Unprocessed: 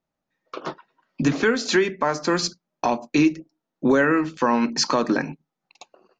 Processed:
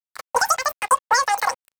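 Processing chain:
phaser with its sweep stopped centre 2,400 Hz, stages 4
change of speed 3.46×
dead-zone distortion −42.5 dBFS
level +4 dB

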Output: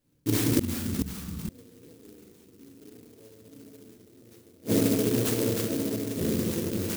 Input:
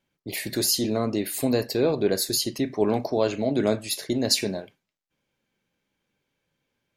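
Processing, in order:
low-shelf EQ 290 Hz +6.5 dB
feedback echo with a long and a short gap by turns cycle 1,254 ms, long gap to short 3 to 1, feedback 39%, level −12 dB
feedback delay network reverb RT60 1.9 s, low-frequency decay 1.05×, high-frequency decay 0.25×, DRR −7.5 dB
gate with flip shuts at −8 dBFS, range −40 dB
delay with pitch and tempo change per echo 273 ms, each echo −4 semitones, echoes 2, each echo −6 dB
flat-topped bell 1,100 Hz −9.5 dB
converter with an unsteady clock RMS 0.14 ms
level −1.5 dB

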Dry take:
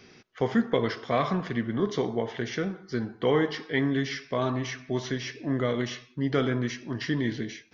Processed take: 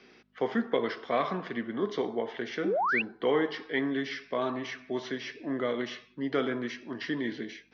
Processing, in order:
mains hum 50 Hz, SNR 27 dB
sound drawn into the spectrogram rise, 0:02.64–0:03.02, 280–2,900 Hz −25 dBFS
three-way crossover with the lows and the highs turned down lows −23 dB, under 200 Hz, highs −21 dB, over 5,100 Hz
level −2 dB

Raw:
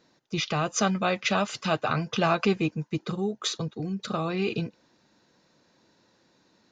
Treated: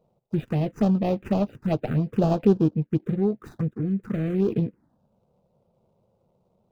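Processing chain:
running median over 41 samples
phaser swept by the level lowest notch 290 Hz, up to 2,100 Hz, full sweep at −23.5 dBFS
high-shelf EQ 2,200 Hz −11.5 dB
level +7 dB

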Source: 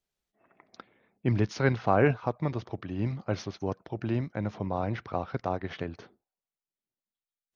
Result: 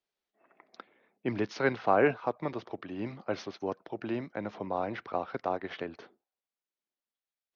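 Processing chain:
three-way crossover with the lows and the highs turned down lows −17 dB, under 230 Hz, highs −17 dB, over 5,700 Hz

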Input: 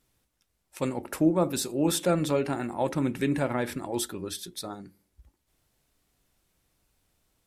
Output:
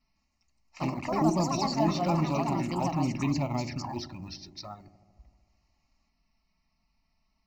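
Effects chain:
Chebyshev low-pass filter 5,600 Hz, order 6
in parallel at −12 dB: floating-point word with a short mantissa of 2 bits
on the sum: flanger swept by the level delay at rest 4.6 ms, full sweep at −23.5 dBFS
delay with pitch and tempo change per echo 158 ms, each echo +4 semitones, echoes 3
phaser with its sweep stopped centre 2,300 Hz, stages 8
on a send: delay with a low-pass on its return 75 ms, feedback 77%, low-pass 500 Hz, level −12.5 dB
on the sum: level +1.5 dB

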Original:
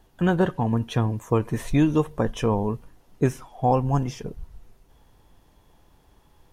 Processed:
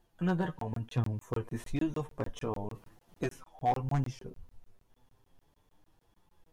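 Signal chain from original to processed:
0:02.74–0:03.24: ceiling on every frequency bin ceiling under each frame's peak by 15 dB
flanger 0.32 Hz, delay 5.7 ms, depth 2.8 ms, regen +52%
wave folding −15 dBFS
flanger 1 Hz, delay 8.1 ms, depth 4.2 ms, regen +35%
tape wow and flutter 28 cents
regular buffer underruns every 0.15 s, samples 1,024, zero, from 0:00.59
level −3 dB

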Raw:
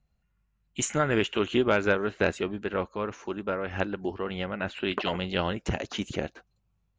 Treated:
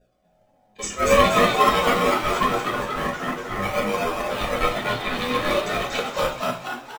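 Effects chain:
ring modulation 680 Hz
parametric band 540 Hz +9.5 dB 0.25 octaves
comb filter 1.7 ms, depth 87%
dynamic equaliser 2,400 Hz, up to +4 dB, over −41 dBFS, Q 1.1
volume swells 135 ms
flanger 0.3 Hz, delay 0.5 ms, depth 4.3 ms, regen +23%
in parallel at −5 dB: sample-and-hold swept by an LFO 41×, swing 100% 0.44 Hz
on the sum: mains hum 60 Hz, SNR 35 dB
mains-hum notches 60/120/180/240/300 Hz
on a send: echo with shifted repeats 238 ms, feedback 53%, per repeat +110 Hz, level −3 dB
on the sum: coupled-rooms reverb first 0.32 s, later 2.6 s, from −22 dB, DRR −2 dB
level +4.5 dB

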